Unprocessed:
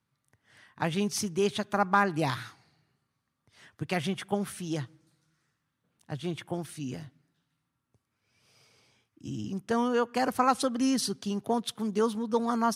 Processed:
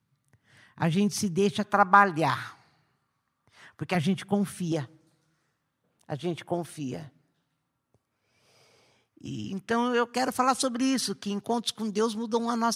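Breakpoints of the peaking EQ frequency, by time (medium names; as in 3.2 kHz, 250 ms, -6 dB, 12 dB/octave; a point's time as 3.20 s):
peaking EQ +7.5 dB 1.6 oct
140 Hz
from 1.64 s 1.1 kHz
from 3.95 s 150 Hz
from 4.72 s 600 Hz
from 9.26 s 2.2 kHz
from 10.06 s 7.2 kHz
from 10.74 s 1.6 kHz
from 11.40 s 5 kHz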